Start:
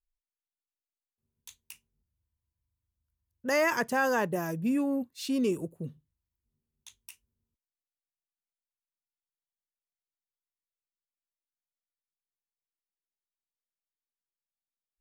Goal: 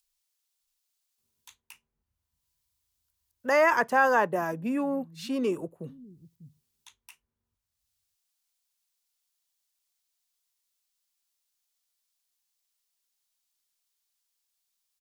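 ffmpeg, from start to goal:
ffmpeg -i in.wav -filter_complex "[0:a]equalizer=frequency=1000:width_type=o:width=2.8:gain=13.5,acrossover=split=170|530|3600[link_01][link_02][link_03][link_04];[link_01]aecho=1:1:597:0.668[link_05];[link_04]acompressor=mode=upward:threshold=-55dB:ratio=2.5[link_06];[link_05][link_02][link_03][link_06]amix=inputs=4:normalize=0,volume=-6dB" out.wav

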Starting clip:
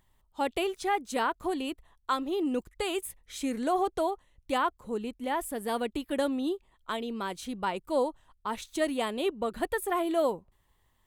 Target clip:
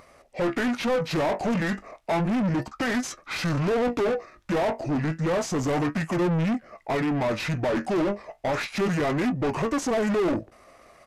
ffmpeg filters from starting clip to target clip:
ffmpeg -i in.wav -filter_complex "[0:a]flanger=delay=7:depth=6.8:regen=59:speed=0.32:shape=triangular,asplit=2[link_01][link_02];[link_02]highpass=frequency=720:poles=1,volume=35dB,asoftclip=type=tanh:threshold=-18dB[link_03];[link_01][link_03]amix=inputs=2:normalize=0,lowpass=frequency=2900:poles=1,volume=-6dB,asetrate=27781,aresample=44100,atempo=1.5874,volume=1dB" out.wav

